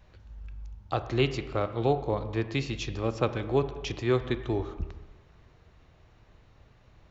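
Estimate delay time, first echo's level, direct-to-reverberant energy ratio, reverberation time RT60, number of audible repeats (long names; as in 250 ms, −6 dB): no echo audible, no echo audible, 9.5 dB, 1.2 s, no echo audible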